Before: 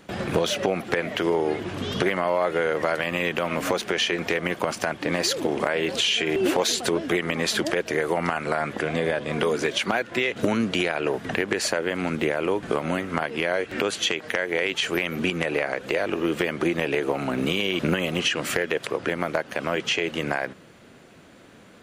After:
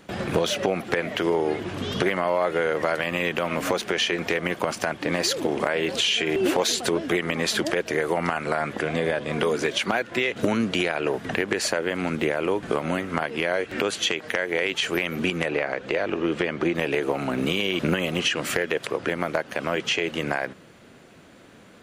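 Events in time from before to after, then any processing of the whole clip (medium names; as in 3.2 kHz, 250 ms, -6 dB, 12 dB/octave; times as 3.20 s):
15.48–16.75 s: distance through air 77 m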